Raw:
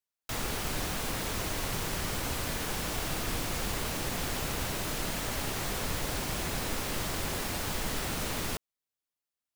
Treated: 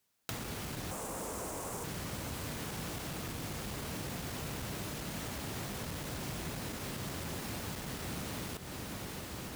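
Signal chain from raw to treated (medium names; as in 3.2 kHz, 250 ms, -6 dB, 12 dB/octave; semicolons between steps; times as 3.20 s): 0.91–1.84 s: graphic EQ 125/500/1000/2000/4000/8000 Hz -7/+7/+7/-4/-9/+10 dB; echo that smears into a reverb 674 ms, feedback 58%, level -14 dB; saturation -30 dBFS, distortion -13 dB; compression 12:1, threshold -53 dBFS, peak gain reduction 20 dB; high-pass 49 Hz; peaking EQ 150 Hz +6.5 dB 2.3 oct; trim +13 dB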